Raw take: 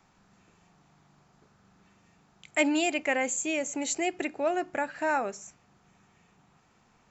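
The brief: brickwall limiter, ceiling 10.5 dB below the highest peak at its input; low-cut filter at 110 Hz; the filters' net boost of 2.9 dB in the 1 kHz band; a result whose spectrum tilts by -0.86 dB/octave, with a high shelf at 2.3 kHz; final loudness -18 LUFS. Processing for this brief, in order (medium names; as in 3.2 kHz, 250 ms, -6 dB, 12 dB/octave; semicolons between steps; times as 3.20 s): high-pass 110 Hz; peaking EQ 1 kHz +3 dB; treble shelf 2.3 kHz +6 dB; trim +11.5 dB; peak limiter -7.5 dBFS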